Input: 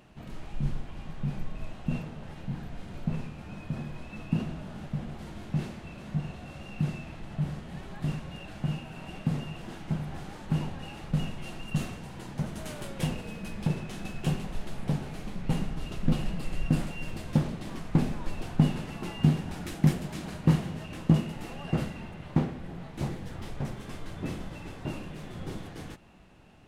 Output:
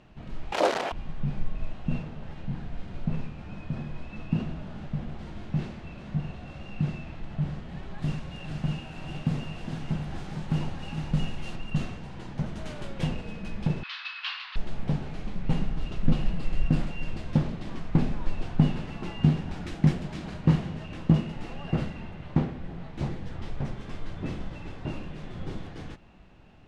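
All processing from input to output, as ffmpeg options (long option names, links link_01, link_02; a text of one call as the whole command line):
ffmpeg -i in.wav -filter_complex "[0:a]asettb=1/sr,asplit=3[link_01][link_02][link_03];[link_01]atrim=end=0.524[link_04];[link_02]atrim=start=0.52:end=0.92,asetpts=PTS-STARTPTS,afade=type=in:duration=0.004:curve=qsin,afade=type=out:start_time=0.396:duration=0.004:curve=qsin,acrusher=bits=5:mode=log:mix=0:aa=0.000001,aeval=exprs='0.15*sin(PI/2*6.31*val(0)/0.15)':channel_layout=same,highpass=frequency=590:width_type=q:width=1.8[link_05];[link_03]atrim=start=0.916[link_06];[link_04][link_05]acrossfade=duration=0.004:curve1=hsin:curve2=qsin[link_07];[link_07][link_06]acrossfade=duration=0.004:curve1=qsin:curve2=hsin,asettb=1/sr,asplit=3[link_08][link_09][link_10];[link_08]atrim=end=7.984[link_11];[link_09]atrim=start=7.98:end=11.56,asetpts=PTS-STARTPTS,afade=type=in:duration=0.004:curve=qsin,afade=type=out:start_time=3.576:duration=0.004:curve=qsin,highshelf=frequency=5800:gain=10.5,aecho=1:1:411|462:0.237|0.376,atrim=end_sample=157878[link_12];[link_10]atrim=start=11.556[link_13];[link_11][link_12]acrossfade=duration=0.004:curve1=hsin:curve2=qsin[link_14];[link_14][link_13]acrossfade=duration=0.004:curve1=qsin:curve2=hsin,asettb=1/sr,asplit=3[link_15][link_16][link_17];[link_15]atrim=end=13.834[link_18];[link_16]atrim=start=13.83:end=14.56,asetpts=PTS-STARTPTS,afade=type=in:duration=0.004:curve=qsin,afade=type=out:start_time=0.726:duration=0.004:curve=qsin,asuperpass=centerf=2200:order=12:qfactor=0.61,aemphasis=mode=production:type=75kf,acontrast=63[link_19];[link_17]atrim=start=14.556[link_20];[link_18][link_19]acrossfade=duration=0.004:curve1=hsin:curve2=qsin[link_21];[link_21][link_20]acrossfade=duration=0.004:curve1=qsin:curve2=hsin,lowpass=5200,lowshelf=frequency=64:gain=7.5" out.wav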